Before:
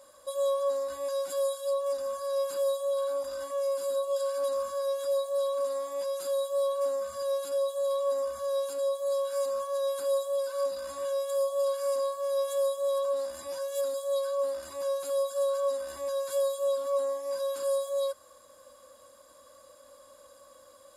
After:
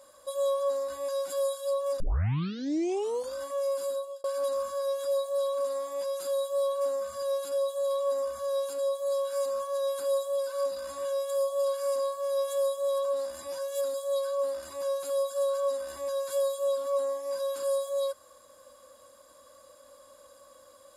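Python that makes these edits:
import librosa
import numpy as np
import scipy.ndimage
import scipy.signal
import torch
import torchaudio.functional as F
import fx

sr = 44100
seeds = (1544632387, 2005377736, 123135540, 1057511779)

y = fx.edit(x, sr, fx.tape_start(start_s=2.0, length_s=1.35),
    fx.fade_out_span(start_s=3.85, length_s=0.39), tone=tone)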